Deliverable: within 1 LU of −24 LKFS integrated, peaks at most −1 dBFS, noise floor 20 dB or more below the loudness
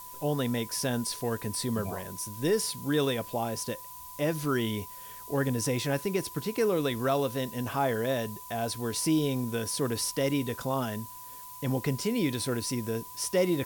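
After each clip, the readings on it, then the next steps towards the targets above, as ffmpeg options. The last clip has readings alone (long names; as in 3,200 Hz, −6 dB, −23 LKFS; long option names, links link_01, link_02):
interfering tone 1,000 Hz; level of the tone −46 dBFS; background noise floor −45 dBFS; target noise floor −50 dBFS; integrated loudness −30.0 LKFS; sample peak −15.0 dBFS; target loudness −24.0 LKFS
→ -af "bandreject=frequency=1000:width=30"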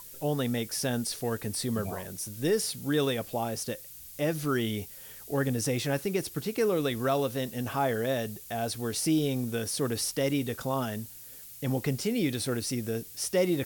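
interfering tone none found; background noise floor −47 dBFS; target noise floor −51 dBFS
→ -af "afftdn=noise_reduction=6:noise_floor=-47"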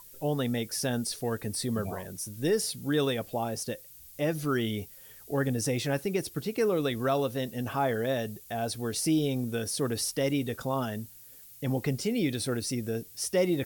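background noise floor −51 dBFS; integrated loudness −30.5 LKFS; sample peak −15.0 dBFS; target loudness −24.0 LKFS
→ -af "volume=6.5dB"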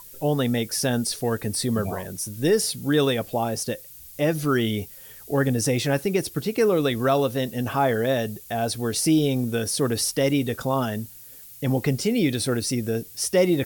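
integrated loudness −24.0 LKFS; sample peak −8.5 dBFS; background noise floor −45 dBFS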